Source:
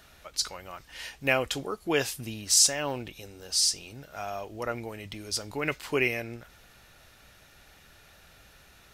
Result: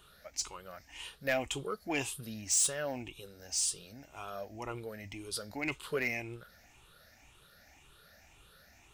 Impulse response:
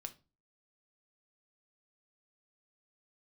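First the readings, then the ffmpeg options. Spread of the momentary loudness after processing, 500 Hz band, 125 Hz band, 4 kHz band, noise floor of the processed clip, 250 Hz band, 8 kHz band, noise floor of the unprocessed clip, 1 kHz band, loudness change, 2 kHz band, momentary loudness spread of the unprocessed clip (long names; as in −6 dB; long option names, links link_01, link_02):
17 LU, −6.5 dB, −6.5 dB, −11.0 dB, −62 dBFS, −5.5 dB, −6.0 dB, −57 dBFS, −6.5 dB, −7.0 dB, −6.0 dB, 19 LU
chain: -af "afftfilt=real='re*pow(10,13/40*sin(2*PI*(0.66*log(max(b,1)*sr/1024/100)/log(2)-(1.9)*(pts-256)/sr)))':imag='im*pow(10,13/40*sin(2*PI*(0.66*log(max(b,1)*sr/1024/100)/log(2)-(1.9)*(pts-256)/sr)))':win_size=1024:overlap=0.75,asoftclip=type=tanh:threshold=-15dB,volume=-7dB"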